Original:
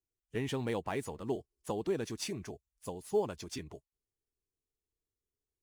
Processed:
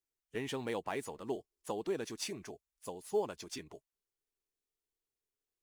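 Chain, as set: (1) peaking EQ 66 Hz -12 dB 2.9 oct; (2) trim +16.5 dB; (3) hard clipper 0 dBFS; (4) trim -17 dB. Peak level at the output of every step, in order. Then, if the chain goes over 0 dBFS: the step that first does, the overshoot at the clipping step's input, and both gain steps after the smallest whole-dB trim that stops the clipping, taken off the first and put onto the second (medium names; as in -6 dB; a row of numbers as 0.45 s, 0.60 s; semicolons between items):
-22.5 dBFS, -6.0 dBFS, -6.0 dBFS, -23.0 dBFS; nothing clips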